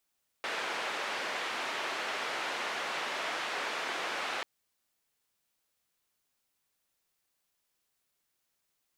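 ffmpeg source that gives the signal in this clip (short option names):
-f lavfi -i "anoisesrc=c=white:d=3.99:r=44100:seed=1,highpass=f=430,lowpass=f=2300,volume=-20.4dB"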